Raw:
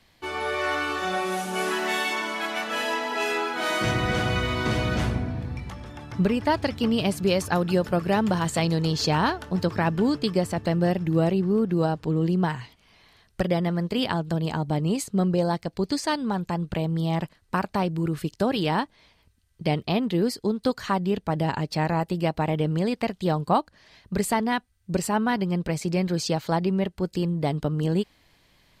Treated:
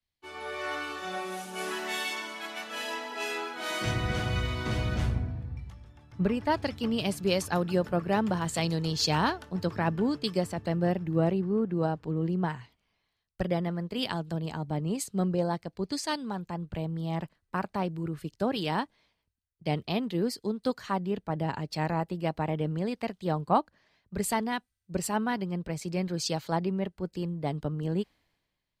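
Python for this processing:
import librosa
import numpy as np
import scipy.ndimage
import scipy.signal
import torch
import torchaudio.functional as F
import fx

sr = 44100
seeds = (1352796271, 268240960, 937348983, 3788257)

y = fx.band_widen(x, sr, depth_pct=70)
y = y * librosa.db_to_amplitude(-5.5)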